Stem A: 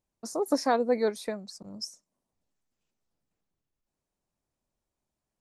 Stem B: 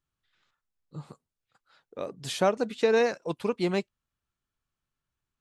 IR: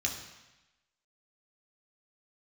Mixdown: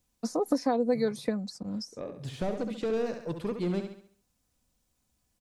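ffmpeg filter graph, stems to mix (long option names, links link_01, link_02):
-filter_complex "[0:a]highpass=49,highshelf=frequency=2000:gain=12,aecho=1:1:4:0.54,volume=1dB[link_01];[1:a]deesser=0.95,asoftclip=type=tanh:threshold=-24dB,volume=-4.5dB,asplit=2[link_02][link_03];[link_03]volume=-8dB,aecho=0:1:68|136|204|272|340|408:1|0.42|0.176|0.0741|0.0311|0.0131[link_04];[link_01][link_02][link_04]amix=inputs=3:normalize=0,lowshelf=frequency=220:gain=11.5,acrossover=split=910|3700[link_05][link_06][link_07];[link_05]acompressor=threshold=-24dB:ratio=4[link_08];[link_06]acompressor=threshold=-46dB:ratio=4[link_09];[link_07]acompressor=threshold=-52dB:ratio=4[link_10];[link_08][link_09][link_10]amix=inputs=3:normalize=0"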